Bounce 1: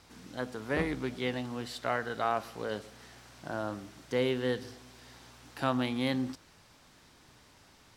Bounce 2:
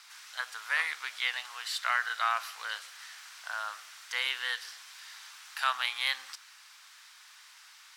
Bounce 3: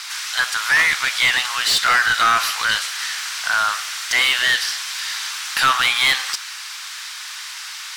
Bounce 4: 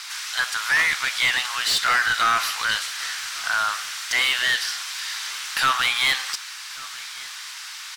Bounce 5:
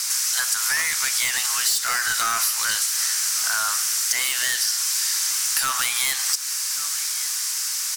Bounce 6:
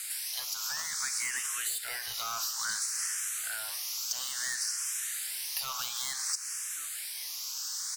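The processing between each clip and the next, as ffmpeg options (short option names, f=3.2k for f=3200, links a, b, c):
-af "highpass=f=1.2k:w=0.5412,highpass=f=1.2k:w=1.3066,volume=8dB"
-filter_complex "[0:a]highshelf=f=3.6k:g=7,asplit=2[a][b];[b]highpass=f=720:p=1,volume=22dB,asoftclip=type=tanh:threshold=-11dB[c];[a][c]amix=inputs=2:normalize=0,lowpass=f=5.7k:p=1,volume=-6dB,volume=4.5dB"
-af "aecho=1:1:1141:0.0891,volume=-4dB"
-af "aexciter=amount=4.8:drive=7.6:freq=5.1k,acompressor=threshold=-19dB:ratio=6"
-filter_complex "[0:a]asplit=2[a][b];[b]afreqshift=0.58[c];[a][c]amix=inputs=2:normalize=1,volume=-8.5dB"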